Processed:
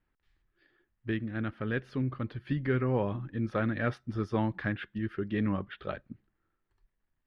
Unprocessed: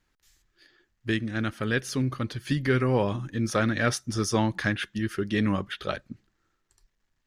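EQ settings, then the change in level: distance through air 440 m; -4.0 dB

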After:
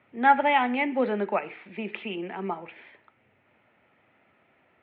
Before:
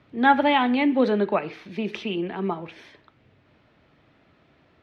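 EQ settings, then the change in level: distance through air 150 m; cabinet simulation 120–2500 Hz, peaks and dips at 150 Hz -8 dB, 300 Hz -7 dB, 440 Hz -4 dB, 640 Hz -4 dB, 1.1 kHz -8 dB, 1.6 kHz -6 dB; bass shelf 450 Hz -11.5 dB; +5.5 dB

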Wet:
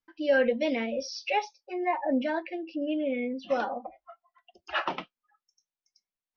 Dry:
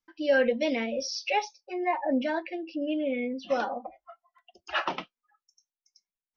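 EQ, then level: distance through air 91 m; 0.0 dB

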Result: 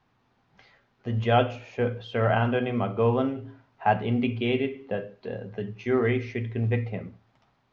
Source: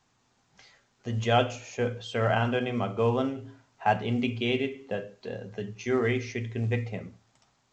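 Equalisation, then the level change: distance through air 270 m; +3.0 dB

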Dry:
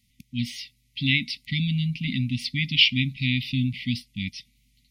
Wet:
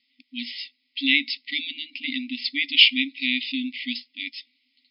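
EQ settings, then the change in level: brick-wall FIR band-pass 250–5300 Hz; +3.5 dB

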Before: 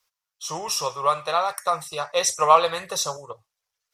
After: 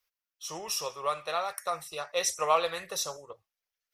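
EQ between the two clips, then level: graphic EQ 125/500/1000/4000/8000 Hz -12/-3/-9/-4/-10 dB; dynamic bell 8.7 kHz, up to +5 dB, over -49 dBFS, Q 0.75; -2.0 dB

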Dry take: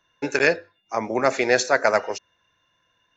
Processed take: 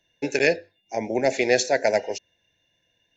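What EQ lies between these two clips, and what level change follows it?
Butterworth band-stop 1.2 kHz, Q 1.2; 0.0 dB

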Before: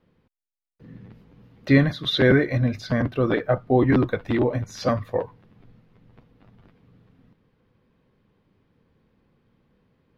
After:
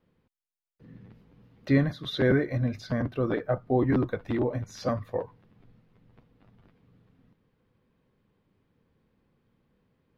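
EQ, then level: dynamic bell 3 kHz, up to -6 dB, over -40 dBFS, Q 0.85; -5.5 dB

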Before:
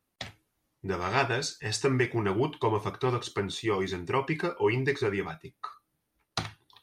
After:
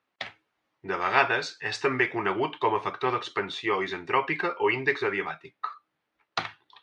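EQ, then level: high-pass 1 kHz 6 dB/octave; low-pass 2.7 kHz 12 dB/octave; +8.5 dB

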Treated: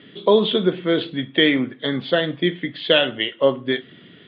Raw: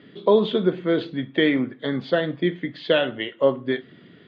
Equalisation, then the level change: resonant low-pass 3.3 kHz, resonance Q 2.5; +1.5 dB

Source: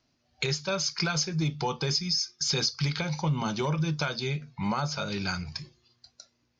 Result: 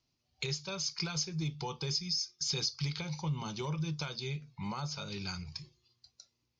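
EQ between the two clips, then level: fifteen-band graphic EQ 250 Hz -7 dB, 630 Hz -8 dB, 1.6 kHz -9 dB; -5.5 dB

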